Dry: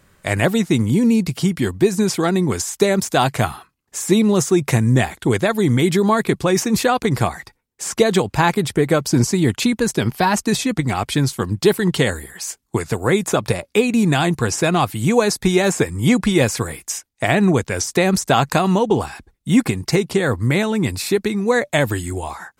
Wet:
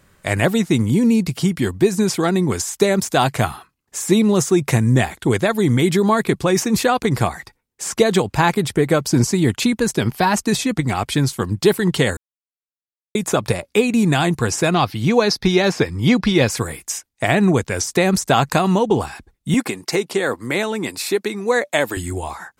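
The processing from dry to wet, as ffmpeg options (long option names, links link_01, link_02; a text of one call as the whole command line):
ffmpeg -i in.wav -filter_complex "[0:a]asettb=1/sr,asplit=3[link_01][link_02][link_03];[link_01]atrim=end=14.744[link_04];[link_02]atrim=start=14.74:end=16.5,asetpts=PTS-STARTPTS,afade=type=in:duration=0.004:curve=qsin,afade=type=out:start_time=1.756:duration=0.004:curve=qsin,highshelf=frequency=6300:width_type=q:width=3:gain=-7.5[link_05];[link_03]atrim=start=16.496[link_06];[link_04][link_05]acrossfade=duration=0.004:curve1=hsin:curve2=qsin[link_07];[link_07][link_06]acrossfade=duration=0.004:curve1=qsin:curve2=hsin,asettb=1/sr,asplit=3[link_08][link_09][link_10];[link_08]atrim=end=19.544[link_11];[link_09]atrim=start=19.54:end=21.97,asetpts=PTS-STARTPTS,afade=type=in:duration=0.004:curve=qsin,afade=type=out:start_time=2.426:duration=0.004:curve=qsin,highpass=300[link_12];[link_10]atrim=start=21.966[link_13];[link_11][link_12]acrossfade=duration=0.004:curve1=hsin:curve2=qsin[link_14];[link_14][link_13]acrossfade=duration=0.004:curve1=qsin:curve2=hsin,asplit=3[link_15][link_16][link_17];[link_15]atrim=end=12.17,asetpts=PTS-STARTPTS,afade=type=out:start_time=12.166:duration=0.004:curve=hsin[link_18];[link_16]atrim=start=12.17:end=13.15,asetpts=PTS-STARTPTS,volume=0[link_19];[link_17]atrim=start=13.15,asetpts=PTS-STARTPTS,afade=type=in:duration=0.004:curve=hsin[link_20];[link_18][link_19][link_20]concat=n=3:v=0:a=1" out.wav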